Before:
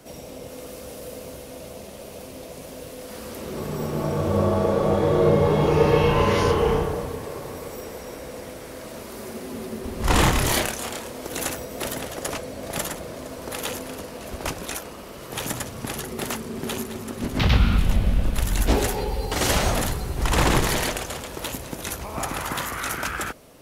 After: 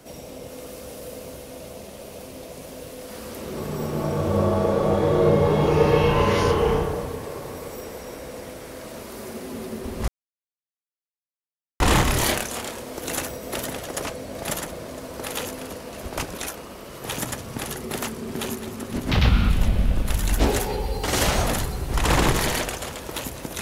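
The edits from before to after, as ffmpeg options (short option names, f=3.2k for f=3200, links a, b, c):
-filter_complex "[0:a]asplit=2[a][b];[a]atrim=end=10.08,asetpts=PTS-STARTPTS,afade=t=out:st=10.076:d=0.004:c=hsin,apad=pad_dur=1.72[c];[b]atrim=start=10.08,asetpts=PTS-STARTPTS,afade=t=in:d=0.004:c=hsin[d];[c][d]concat=n=2:v=0:a=1"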